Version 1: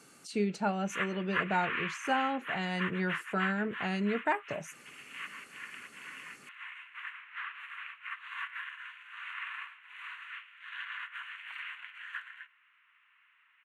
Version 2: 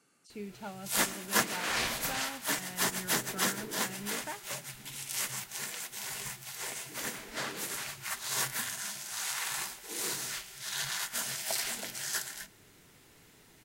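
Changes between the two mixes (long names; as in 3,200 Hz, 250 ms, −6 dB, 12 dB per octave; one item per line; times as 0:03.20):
speech −12.0 dB
background: remove elliptic band-pass filter 1,100–2,800 Hz, stop band 40 dB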